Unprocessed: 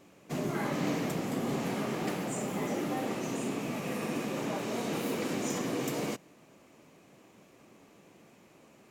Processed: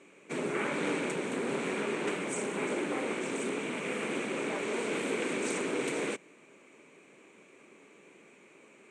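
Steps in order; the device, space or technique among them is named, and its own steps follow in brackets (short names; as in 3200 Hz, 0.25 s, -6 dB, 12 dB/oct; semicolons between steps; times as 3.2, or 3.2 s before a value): full-range speaker at full volume (Doppler distortion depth 0.77 ms; speaker cabinet 230–8700 Hz, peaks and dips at 410 Hz +6 dB, 720 Hz -6 dB, 1500 Hz +3 dB, 2300 Hz +10 dB, 5000 Hz -10 dB, 8400 Hz +10 dB)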